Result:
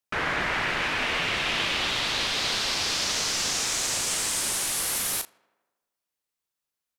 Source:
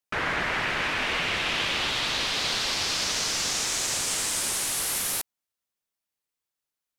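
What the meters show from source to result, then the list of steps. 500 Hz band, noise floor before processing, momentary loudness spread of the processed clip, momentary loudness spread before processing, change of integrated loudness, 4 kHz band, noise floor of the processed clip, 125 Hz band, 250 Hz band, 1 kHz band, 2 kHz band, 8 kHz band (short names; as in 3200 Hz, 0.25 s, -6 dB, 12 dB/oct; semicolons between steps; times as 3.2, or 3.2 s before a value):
+0.5 dB, under -85 dBFS, 2 LU, 2 LU, +0.5 dB, +0.5 dB, under -85 dBFS, +0.5 dB, +0.5 dB, +0.5 dB, +0.5 dB, +0.5 dB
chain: doubler 36 ms -10 dB; on a send: tape echo 79 ms, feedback 69%, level -24 dB, low-pass 3000 Hz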